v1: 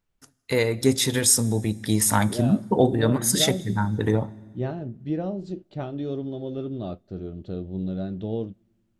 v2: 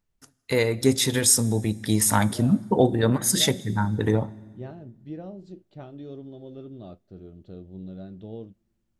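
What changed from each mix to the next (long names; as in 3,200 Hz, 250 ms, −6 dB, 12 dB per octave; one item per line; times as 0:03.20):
second voice −9.5 dB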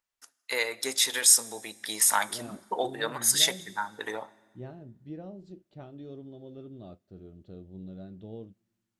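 first voice: add high-pass filter 880 Hz 12 dB per octave
second voice −4.0 dB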